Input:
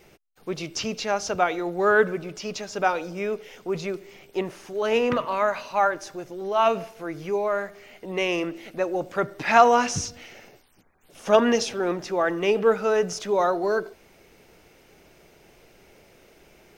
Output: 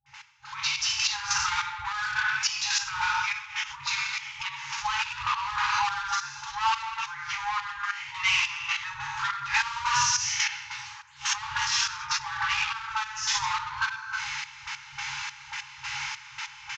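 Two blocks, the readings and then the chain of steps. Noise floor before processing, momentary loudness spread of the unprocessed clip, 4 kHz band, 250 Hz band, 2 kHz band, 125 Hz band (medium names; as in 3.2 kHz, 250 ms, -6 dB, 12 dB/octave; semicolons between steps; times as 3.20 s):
-56 dBFS, 14 LU, +7.5 dB, under -30 dB, +2.5 dB, -9.5 dB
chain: gated-style reverb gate 350 ms falling, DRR -4 dB; overdrive pedal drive 26 dB, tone 1.7 kHz, clips at -2 dBFS; compression 16:1, threshold -19 dBFS, peak gain reduction 14 dB; trance gate ".x...xxxx.." 193 bpm -12 dB; high-pass 49 Hz; dynamic bell 5.6 kHz, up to +3 dB, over -44 dBFS, Q 0.92; peak limiter -21 dBFS, peak gain reduction 9.5 dB; resampled via 16 kHz; level rider gain up to 10.5 dB; treble shelf 2.7 kHz +8 dB; phase dispersion highs, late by 61 ms, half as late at 420 Hz; FFT band-reject 140–810 Hz; trim -8.5 dB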